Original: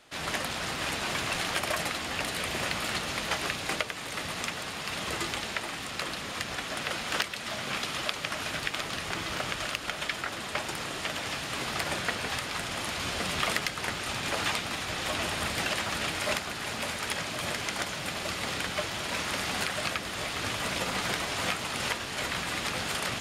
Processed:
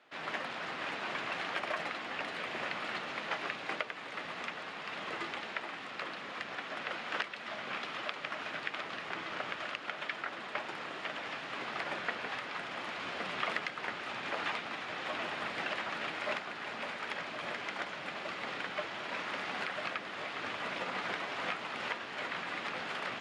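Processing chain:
band-pass filter 190–2,200 Hz
spectral tilt +1.5 dB per octave
level −4 dB

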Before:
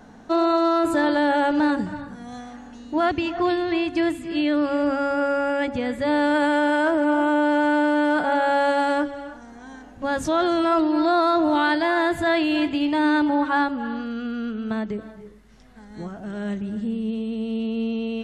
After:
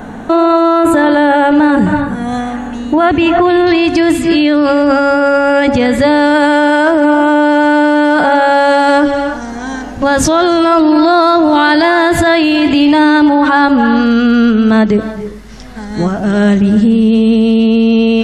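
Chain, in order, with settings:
parametric band 5,200 Hz −12.5 dB 0.62 octaves, from 0:03.67 +4 dB
boost into a limiter +21 dB
level −1 dB

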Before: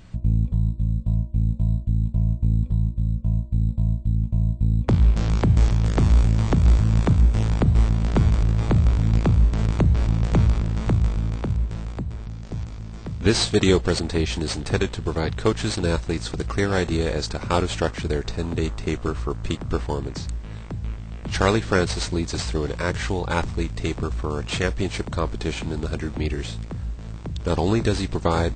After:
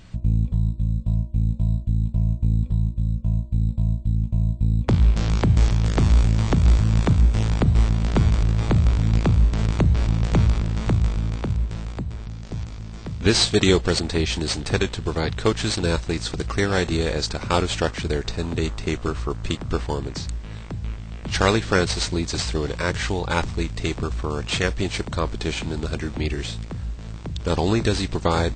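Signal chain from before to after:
parametric band 4,100 Hz +4 dB 2.4 octaves

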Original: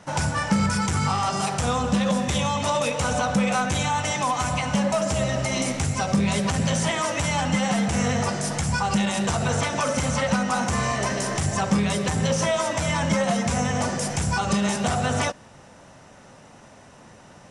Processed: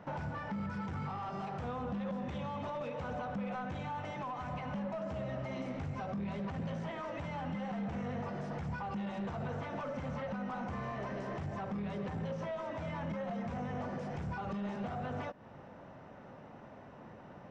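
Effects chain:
low-shelf EQ 96 Hz −9 dB
downward compressor, threshold −32 dBFS, peak gain reduction 14 dB
in parallel at −7 dB: bit reduction 4 bits
on the sum: hard clipping −32 dBFS, distortion −13 dB
head-to-tape spacing loss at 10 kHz 42 dB

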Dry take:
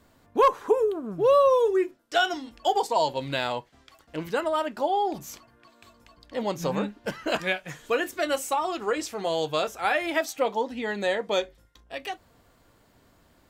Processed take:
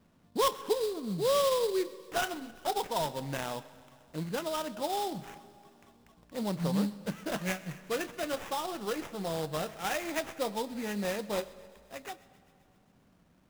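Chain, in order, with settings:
stylus tracing distortion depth 0.023 ms
parametric band 180 Hz +12.5 dB 0.73 octaves
sample-rate reduction 4,400 Hz, jitter 20%
feedback echo with a high-pass in the loop 131 ms, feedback 73%, high-pass 1,000 Hz, level −21 dB
comb and all-pass reverb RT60 2.5 s, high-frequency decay 0.45×, pre-delay 55 ms, DRR 18 dB
level −8.5 dB

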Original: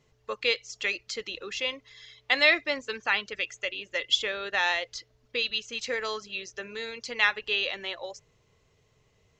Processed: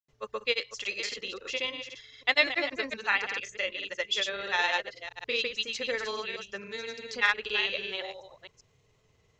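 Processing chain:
delay that plays each chunk backwards 247 ms, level −9 dB
granular cloud 100 ms, grains 20 per second, pitch spread up and down by 0 semitones

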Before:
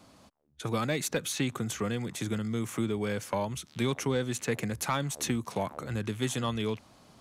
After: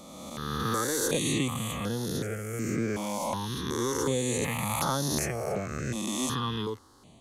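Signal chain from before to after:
peak hold with a rise ahead of every peak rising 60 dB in 2.06 s
step-sequenced phaser 2.7 Hz 430–7,900 Hz

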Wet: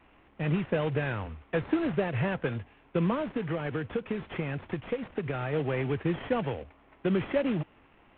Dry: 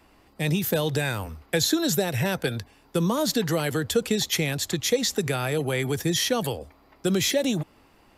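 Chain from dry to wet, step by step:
variable-slope delta modulation 16 kbit/s
0:03.14–0:05.53: downward compressor, threshold −25 dBFS, peak gain reduction 7.5 dB
level −2.5 dB

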